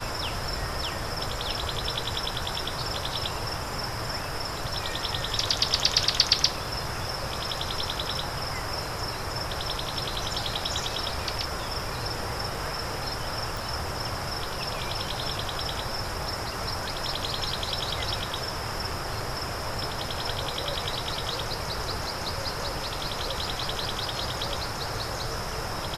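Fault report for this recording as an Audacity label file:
13.570000	13.570000	pop

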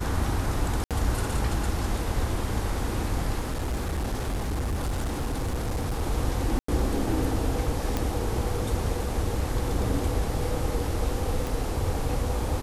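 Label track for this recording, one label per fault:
0.840000	0.910000	gap 67 ms
3.390000	6.020000	clipped -24.5 dBFS
6.590000	6.680000	gap 94 ms
7.970000	7.970000	pop -12 dBFS
11.470000	11.470000	pop

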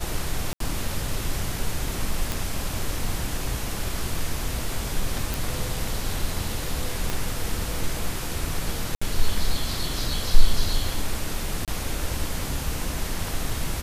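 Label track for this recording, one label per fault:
0.530000	0.600000	gap 73 ms
2.320000	2.320000	pop
5.340000	5.340000	pop
7.100000	7.100000	pop -11 dBFS
8.950000	9.020000	gap 65 ms
11.650000	11.680000	gap 27 ms

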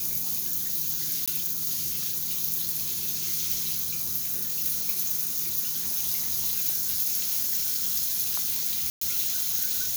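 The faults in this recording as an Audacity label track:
1.260000	1.280000	gap 16 ms
8.900000	9.010000	gap 0.114 s

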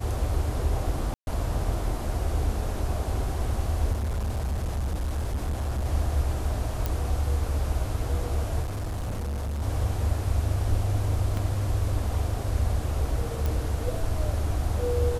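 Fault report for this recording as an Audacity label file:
1.140000	1.270000	gap 0.131 s
3.920000	5.860000	clipped -24.5 dBFS
6.860000	6.860000	pop -13 dBFS
8.620000	9.630000	clipped -27.5 dBFS
11.370000	11.370000	gap 2.4 ms
13.460000	13.460000	pop

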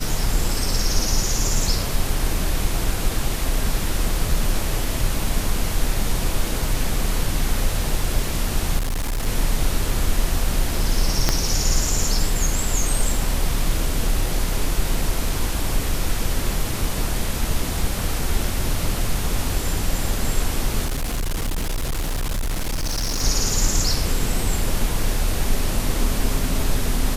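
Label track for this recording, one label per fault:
8.780000	9.270000	clipped -20 dBFS
11.290000	11.290000	pop -2 dBFS
20.850000	23.230000	clipped -20 dBFS

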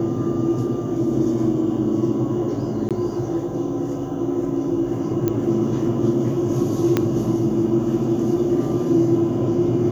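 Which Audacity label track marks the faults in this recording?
2.890000	2.910000	gap 17 ms
5.280000	5.280000	pop -9 dBFS
6.970000	6.970000	pop -5 dBFS

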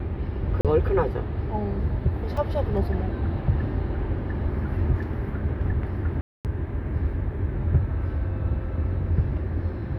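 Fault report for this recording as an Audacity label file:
0.610000	0.650000	gap 37 ms
2.370000	2.370000	gap 3.8 ms
6.210000	6.450000	gap 0.238 s

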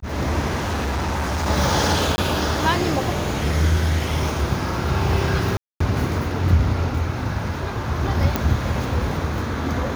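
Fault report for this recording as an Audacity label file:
0.560000	1.480000	clipped -20 dBFS
2.160000	2.180000	gap 20 ms
5.570000	5.800000	gap 0.234 s
8.360000	8.360000	pop

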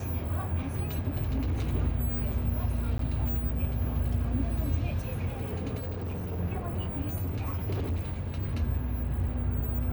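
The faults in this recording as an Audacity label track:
1.220000	1.680000	clipped -25 dBFS
2.980000	2.990000	gap
5.790000	6.400000	clipped -31 dBFS
7.200000	8.600000	clipped -27 dBFS

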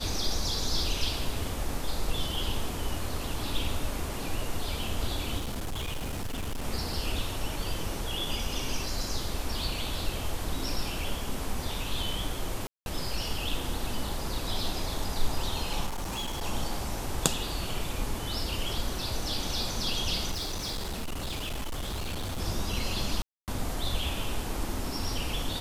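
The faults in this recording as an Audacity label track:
5.370000	6.650000	clipped -29.5 dBFS
12.670000	12.860000	gap 0.191 s
15.860000	16.430000	clipped -30 dBFS
20.310000	22.400000	clipped -30 dBFS
23.220000	23.480000	gap 0.258 s

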